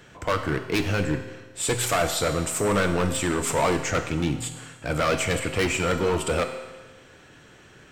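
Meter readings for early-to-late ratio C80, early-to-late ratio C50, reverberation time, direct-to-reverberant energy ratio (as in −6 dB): 10.0 dB, 8.5 dB, 1.3 s, 6.0 dB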